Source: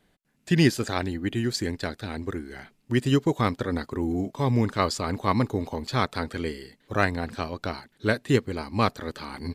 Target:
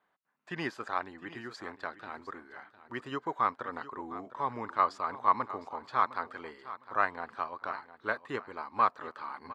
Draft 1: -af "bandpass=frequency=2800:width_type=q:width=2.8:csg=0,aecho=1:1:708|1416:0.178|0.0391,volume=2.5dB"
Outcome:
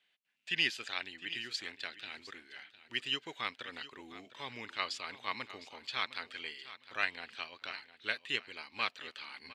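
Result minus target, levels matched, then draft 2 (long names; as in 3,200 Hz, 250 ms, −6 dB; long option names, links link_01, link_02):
1,000 Hz band −10.0 dB
-af "bandpass=frequency=1100:width_type=q:width=2.8:csg=0,aecho=1:1:708|1416:0.178|0.0391,volume=2.5dB"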